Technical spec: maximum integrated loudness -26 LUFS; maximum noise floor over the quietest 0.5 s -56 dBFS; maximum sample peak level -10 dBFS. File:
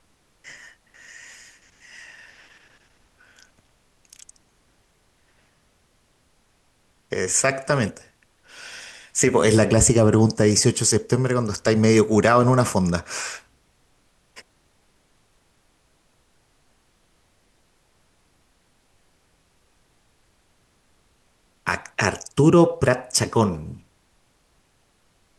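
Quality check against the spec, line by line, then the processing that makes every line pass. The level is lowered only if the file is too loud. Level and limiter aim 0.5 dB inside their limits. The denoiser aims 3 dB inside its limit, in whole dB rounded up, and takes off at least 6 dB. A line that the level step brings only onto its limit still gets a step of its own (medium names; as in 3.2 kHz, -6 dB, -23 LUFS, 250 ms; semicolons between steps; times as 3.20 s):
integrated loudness -19.5 LUFS: fail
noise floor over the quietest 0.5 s -63 dBFS: pass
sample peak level -5.5 dBFS: fail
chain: trim -7 dB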